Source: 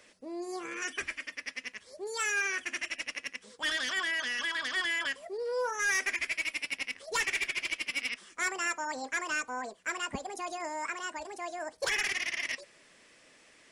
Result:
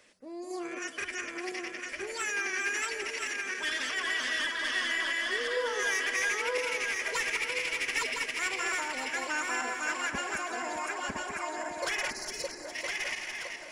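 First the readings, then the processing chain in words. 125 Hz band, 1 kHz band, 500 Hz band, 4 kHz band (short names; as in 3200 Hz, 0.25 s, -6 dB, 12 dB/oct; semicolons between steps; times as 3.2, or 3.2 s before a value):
n/a, +2.0 dB, +2.5 dB, +1.5 dB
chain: regenerating reverse delay 0.506 s, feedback 57%, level -0.5 dB; spectral delete 12.1–12.65, 590–3900 Hz; echo with dull and thin repeats by turns 0.204 s, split 1800 Hz, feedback 74%, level -8 dB; gain -2.5 dB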